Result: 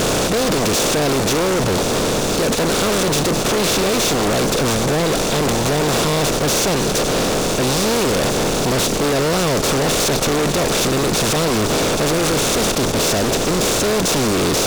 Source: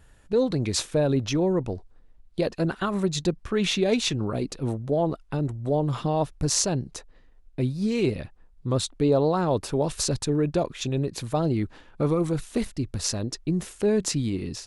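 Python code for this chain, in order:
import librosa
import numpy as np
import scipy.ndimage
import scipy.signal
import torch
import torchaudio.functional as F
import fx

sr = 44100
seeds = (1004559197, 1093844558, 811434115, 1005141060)

y = fx.bin_compress(x, sr, power=0.2)
y = fx.fuzz(y, sr, gain_db=29.0, gate_db=-36.0)
y = F.gain(torch.from_numpy(y), -2.5).numpy()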